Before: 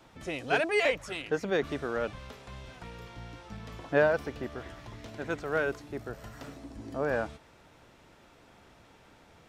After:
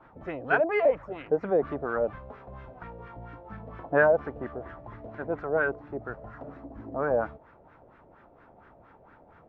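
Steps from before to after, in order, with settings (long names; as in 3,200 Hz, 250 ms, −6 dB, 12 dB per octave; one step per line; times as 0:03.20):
auto-filter low-pass sine 4.3 Hz 600–1,600 Hz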